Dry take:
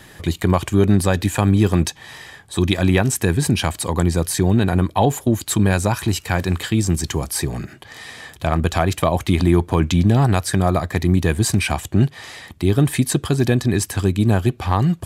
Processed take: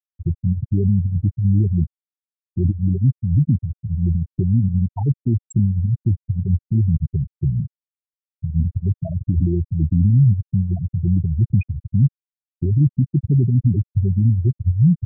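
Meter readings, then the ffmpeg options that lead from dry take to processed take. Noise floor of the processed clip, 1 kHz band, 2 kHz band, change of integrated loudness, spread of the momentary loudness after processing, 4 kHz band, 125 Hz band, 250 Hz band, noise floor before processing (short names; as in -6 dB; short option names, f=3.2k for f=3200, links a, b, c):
under -85 dBFS, under -20 dB, under -25 dB, -1.0 dB, 6 LU, under -40 dB, +2.0 dB, -3.5 dB, -45 dBFS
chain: -af "alimiter=limit=-14dB:level=0:latency=1:release=30,equalizer=f=120:w=0.9:g=9.5,afftfilt=real='re*gte(hypot(re,im),0.562)':imag='im*gte(hypot(re,im),0.562)':win_size=1024:overlap=0.75"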